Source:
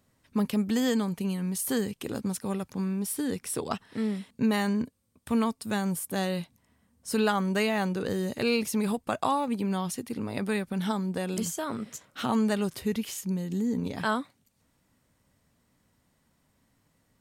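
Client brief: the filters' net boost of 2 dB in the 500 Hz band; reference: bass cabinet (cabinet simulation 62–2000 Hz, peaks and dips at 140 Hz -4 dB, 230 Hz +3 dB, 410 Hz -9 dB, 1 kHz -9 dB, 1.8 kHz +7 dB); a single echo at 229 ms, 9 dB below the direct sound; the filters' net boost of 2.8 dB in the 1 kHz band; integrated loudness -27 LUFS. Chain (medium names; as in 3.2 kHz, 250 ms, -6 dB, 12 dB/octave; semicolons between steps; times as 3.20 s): cabinet simulation 62–2000 Hz, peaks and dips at 140 Hz -4 dB, 230 Hz +3 dB, 410 Hz -9 dB, 1 kHz -9 dB, 1.8 kHz +7 dB; peaking EQ 500 Hz +6 dB; peaking EQ 1 kHz +6 dB; delay 229 ms -9 dB; trim +0.5 dB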